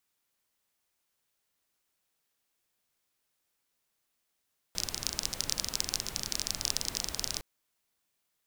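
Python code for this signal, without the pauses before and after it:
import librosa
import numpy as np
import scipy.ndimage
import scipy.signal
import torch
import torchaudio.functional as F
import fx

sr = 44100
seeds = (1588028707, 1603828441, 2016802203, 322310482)

y = fx.rain(sr, seeds[0], length_s=2.66, drops_per_s=24.0, hz=5300.0, bed_db=-7.0)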